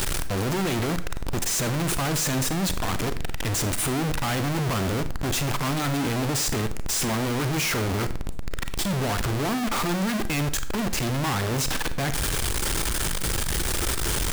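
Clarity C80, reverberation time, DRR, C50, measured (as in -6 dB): 18.0 dB, 0.50 s, 11.0 dB, 14.0 dB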